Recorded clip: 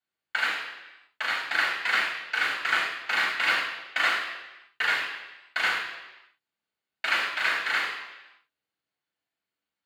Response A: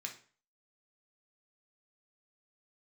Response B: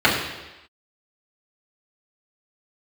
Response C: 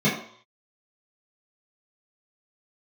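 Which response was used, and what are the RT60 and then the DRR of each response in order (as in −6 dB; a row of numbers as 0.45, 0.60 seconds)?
B; 0.40, 1.0, 0.60 seconds; 1.0, −8.0, −10.5 decibels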